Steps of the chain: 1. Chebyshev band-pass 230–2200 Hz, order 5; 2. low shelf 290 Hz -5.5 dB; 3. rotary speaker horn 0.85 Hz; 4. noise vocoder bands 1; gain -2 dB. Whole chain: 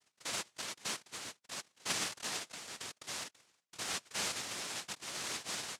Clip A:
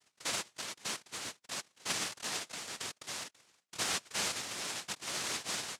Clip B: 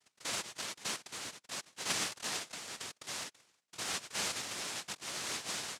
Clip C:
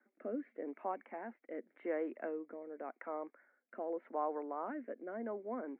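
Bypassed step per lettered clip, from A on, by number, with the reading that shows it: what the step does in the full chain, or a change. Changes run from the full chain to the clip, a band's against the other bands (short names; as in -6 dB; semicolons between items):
3, loudness change +2.5 LU; 1, loudness change +1.0 LU; 4, 2 kHz band -20.0 dB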